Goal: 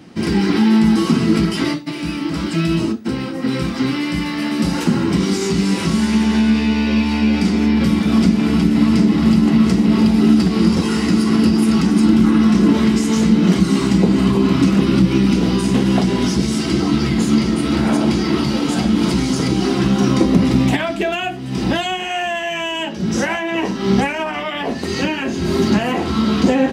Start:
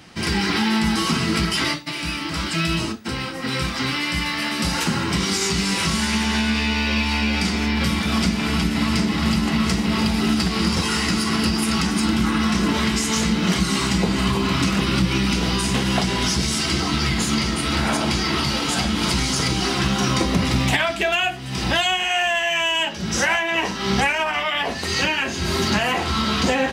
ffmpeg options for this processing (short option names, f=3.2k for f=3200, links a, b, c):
-af "equalizer=f=270:w=0.56:g=14.5,volume=-4.5dB"